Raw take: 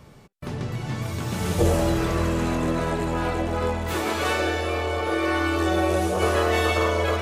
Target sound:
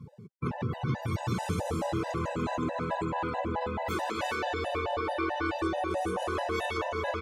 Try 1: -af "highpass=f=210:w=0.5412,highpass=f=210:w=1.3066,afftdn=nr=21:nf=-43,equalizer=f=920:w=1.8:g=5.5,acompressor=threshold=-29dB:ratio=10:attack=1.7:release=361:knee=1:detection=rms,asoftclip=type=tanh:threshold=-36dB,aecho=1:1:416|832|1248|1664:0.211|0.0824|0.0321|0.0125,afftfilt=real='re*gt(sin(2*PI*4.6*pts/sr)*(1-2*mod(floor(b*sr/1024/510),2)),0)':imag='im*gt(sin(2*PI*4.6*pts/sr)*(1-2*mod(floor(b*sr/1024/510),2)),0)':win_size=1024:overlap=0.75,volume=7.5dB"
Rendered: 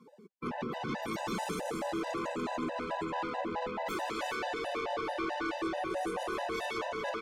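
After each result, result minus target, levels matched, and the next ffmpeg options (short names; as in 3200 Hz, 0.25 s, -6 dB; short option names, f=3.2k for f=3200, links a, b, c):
125 Hz band -10.5 dB; soft clip: distortion +14 dB
-af "highpass=f=84:w=0.5412,highpass=f=84:w=1.3066,afftdn=nr=21:nf=-43,equalizer=f=920:w=1.8:g=5.5,acompressor=threshold=-29dB:ratio=10:attack=1.7:release=361:knee=1:detection=rms,asoftclip=type=tanh:threshold=-36dB,aecho=1:1:416|832|1248|1664:0.211|0.0824|0.0321|0.0125,afftfilt=real='re*gt(sin(2*PI*4.6*pts/sr)*(1-2*mod(floor(b*sr/1024/510),2)),0)':imag='im*gt(sin(2*PI*4.6*pts/sr)*(1-2*mod(floor(b*sr/1024/510),2)),0)':win_size=1024:overlap=0.75,volume=7.5dB"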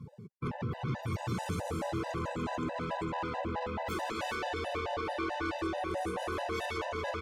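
soft clip: distortion +14 dB
-af "highpass=f=84:w=0.5412,highpass=f=84:w=1.3066,afftdn=nr=21:nf=-43,equalizer=f=920:w=1.8:g=5.5,acompressor=threshold=-29dB:ratio=10:attack=1.7:release=361:knee=1:detection=rms,asoftclip=type=tanh:threshold=-25dB,aecho=1:1:416|832|1248|1664:0.211|0.0824|0.0321|0.0125,afftfilt=real='re*gt(sin(2*PI*4.6*pts/sr)*(1-2*mod(floor(b*sr/1024/510),2)),0)':imag='im*gt(sin(2*PI*4.6*pts/sr)*(1-2*mod(floor(b*sr/1024/510),2)),0)':win_size=1024:overlap=0.75,volume=7.5dB"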